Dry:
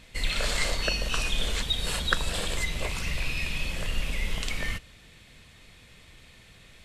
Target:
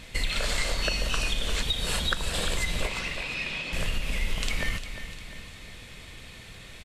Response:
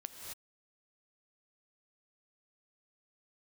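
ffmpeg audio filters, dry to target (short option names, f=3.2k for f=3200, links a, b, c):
-filter_complex "[0:a]acompressor=threshold=-31dB:ratio=6,asettb=1/sr,asplit=3[a][b][c];[a]atrim=end=2.874[d];[b]atrim=start=2.87:end=3.73,asetpts=PTS-STARTPTS,afade=t=in:d=0.004:c=qsin,afade=t=out:st=0.856:d=0.004:c=qsin,highpass=220,lowpass=4.7k[e];[c]atrim=start=3.726[f];[d][e]acrossfade=d=0.004:c1=hsin:c2=qsin[g];[g][f]acrossfade=d=0.004:c1=qsin:c2=hsin,aecho=1:1:351|702|1053|1404|1755:0.282|0.138|0.0677|0.0332|0.0162,volume=7dB"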